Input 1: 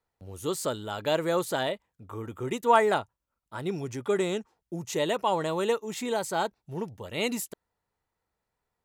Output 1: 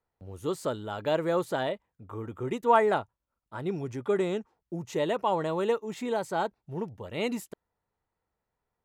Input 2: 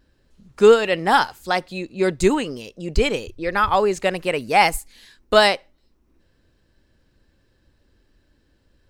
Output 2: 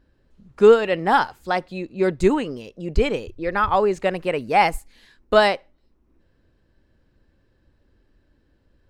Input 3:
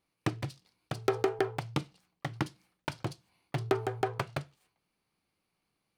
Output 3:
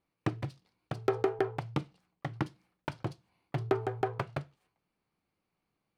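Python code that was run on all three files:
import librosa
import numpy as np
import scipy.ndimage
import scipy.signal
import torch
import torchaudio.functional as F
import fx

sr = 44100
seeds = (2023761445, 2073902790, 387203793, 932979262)

y = fx.high_shelf(x, sr, hz=3200.0, db=-11.5)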